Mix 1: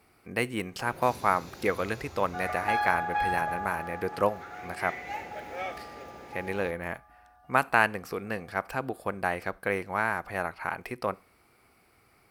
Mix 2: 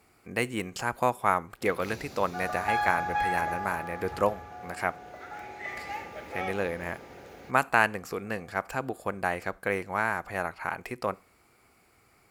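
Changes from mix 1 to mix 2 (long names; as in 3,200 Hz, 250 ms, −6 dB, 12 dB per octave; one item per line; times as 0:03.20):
speech: add parametric band 7,100 Hz +12.5 dB 0.2 octaves
first sound: entry +0.80 s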